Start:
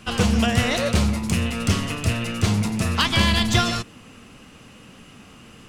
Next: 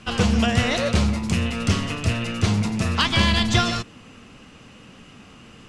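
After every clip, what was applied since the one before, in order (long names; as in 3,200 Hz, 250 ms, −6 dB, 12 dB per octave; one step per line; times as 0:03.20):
low-pass filter 7,500 Hz 12 dB per octave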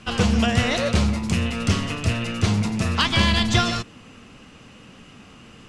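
no processing that can be heard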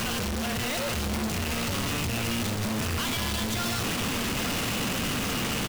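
sign of each sample alone
single-tap delay 864 ms −8 dB
level −6.5 dB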